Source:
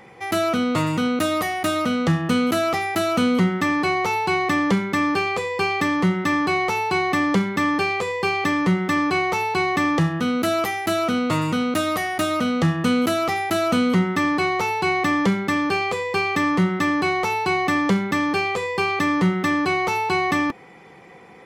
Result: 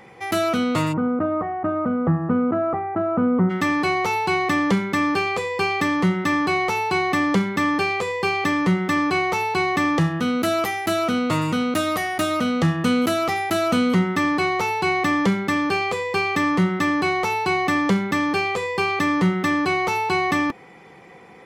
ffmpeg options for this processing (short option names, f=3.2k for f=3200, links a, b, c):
-filter_complex "[0:a]asplit=3[a][b][c];[a]afade=t=out:st=0.92:d=0.02[d];[b]lowpass=f=1.3k:w=0.5412,lowpass=f=1.3k:w=1.3066,afade=t=in:st=0.92:d=0.02,afade=t=out:st=3.49:d=0.02[e];[c]afade=t=in:st=3.49:d=0.02[f];[d][e][f]amix=inputs=3:normalize=0"